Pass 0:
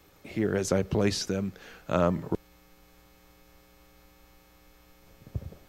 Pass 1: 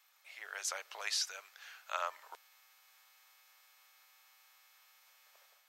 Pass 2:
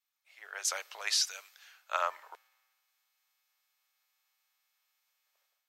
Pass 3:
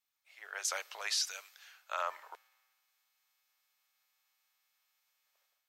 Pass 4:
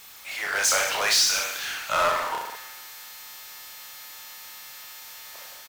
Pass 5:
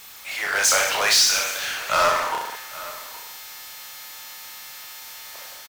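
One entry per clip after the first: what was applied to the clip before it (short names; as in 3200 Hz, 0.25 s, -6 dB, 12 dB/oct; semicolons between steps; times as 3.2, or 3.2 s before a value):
Bessel high-pass 1300 Hz, order 6; AGC gain up to 4.5 dB; gain -6 dB
three-band expander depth 70%
limiter -22.5 dBFS, peak gain reduction 7.5 dB
reverse bouncing-ball echo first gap 30 ms, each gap 1.15×, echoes 5; power-law curve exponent 0.5; gain +6 dB
echo 0.818 s -17.5 dB; gain +3.5 dB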